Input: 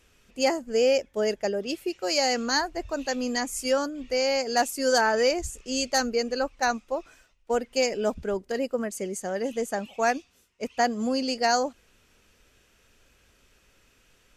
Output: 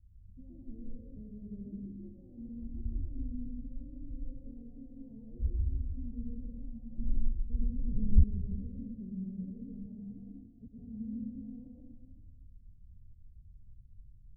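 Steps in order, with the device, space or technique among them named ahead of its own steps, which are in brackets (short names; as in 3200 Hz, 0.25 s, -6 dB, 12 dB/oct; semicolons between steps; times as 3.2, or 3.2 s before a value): club heard from the street (limiter -22.5 dBFS, peak gain reduction 10.5 dB; LPF 130 Hz 24 dB/oct; reverb RT60 1.4 s, pre-delay 0.107 s, DRR -4 dB); 6.98–8.24 RIAA curve playback; gain +7 dB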